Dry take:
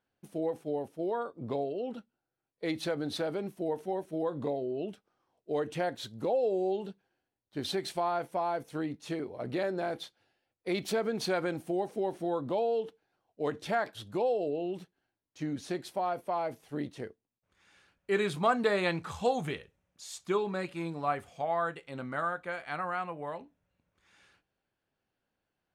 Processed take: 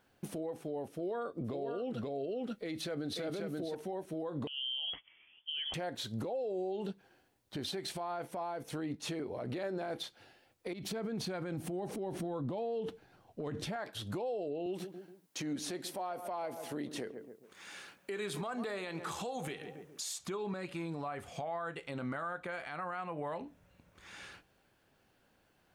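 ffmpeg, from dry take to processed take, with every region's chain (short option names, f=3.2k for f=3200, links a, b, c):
-filter_complex "[0:a]asettb=1/sr,asplit=3[a][b][c];[a]atrim=end=0.914[d];[b]atrim=start=0.91:end=3.75,asetpts=PTS-STARTPTS,afade=t=in:d=0.004:c=qsin,afade=t=out:st=2.836:d=0.004:c=qsin,equalizer=f=900:w=5:g=-10,aecho=1:1:533:0.501,atrim=end_sample=125244[e];[c]atrim=start=3.746[f];[d][e]acrossfade=d=0.004:c1=hsin:c2=qsin[g];[g][f]acrossfade=d=0.004:c1=qsin:c2=hsin,asettb=1/sr,asplit=3[h][i][j];[h]atrim=end=4.474[k];[i]atrim=start=4.47:end=5.74,asetpts=PTS-STARTPTS,afade=t=in:d=0.004:c=qsin,afade=t=out:st=1.266:d=0.004:c=qsin,lowpass=f=3k:t=q:w=0.5098,lowpass=f=3k:t=q:w=0.6013,lowpass=f=3k:t=q:w=0.9,lowpass=f=3k:t=q:w=2.563,afreqshift=-3500,lowshelf=f=120:g=10,acompressor=threshold=-41dB:ratio=8:attack=3.2:release=140:knee=1:detection=peak[l];[j]atrim=start=5.736[m];[k][l]acrossfade=d=0.004:c1=hsin:c2=qsin[n];[n][m]acrossfade=d=0.004:c1=qsin:c2=hsin,asettb=1/sr,asplit=3[o][p][q];[o]atrim=end=10.734[r];[p]atrim=start=10.73:end=13.76,asetpts=PTS-STARTPTS,afade=t=in:d=0.004:c=qsin,afade=t=out:st=3.026:d=0.004:c=qsin,bass=f=250:g=9,treble=f=4k:g=-1,acompressor=threshold=-40dB:ratio=6:attack=3.2:release=140:knee=1:detection=peak[s];[q]atrim=start=13.756[t];[r][s]acrossfade=d=0.004:c1=hsin:c2=qsin[u];[u][t]acrossfade=d=0.004:c1=qsin:c2=hsin,asettb=1/sr,asplit=3[v][w][x];[v]atrim=end=14.664[y];[w]atrim=start=14.66:end=20.19,asetpts=PTS-STARTPTS,afade=t=in:d=0.004:c=qsin,afade=t=out:st=5.526:d=0.004:c=qsin,highpass=190,highshelf=f=6.6k:g=6.5,asplit=2[z][aa];[aa]adelay=139,lowpass=f=1.1k:p=1,volume=-17dB,asplit=2[ab][ac];[ac]adelay=139,lowpass=f=1.1k:p=1,volume=0.41,asplit=2[ad][ae];[ae]adelay=139,lowpass=f=1.1k:p=1,volume=0.41[af];[z][ab][ad][af]amix=inputs=4:normalize=0,atrim=end_sample=243873[ag];[x]atrim=start=20.186[ah];[y][ag]acrossfade=d=0.004:c1=hsin:c2=qsin[ai];[ai][ah]acrossfade=d=0.004:c1=qsin:c2=hsin,acompressor=threshold=-46dB:ratio=3,alimiter=level_in=20dB:limit=-24dB:level=0:latency=1:release=125,volume=-20dB,volume=13.5dB"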